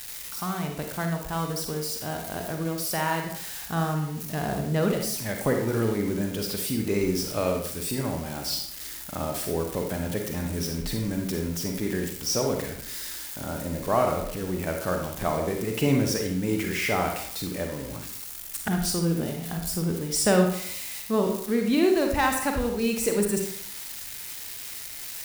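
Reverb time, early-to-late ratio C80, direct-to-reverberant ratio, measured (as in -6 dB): 0.65 s, 8.0 dB, 2.5 dB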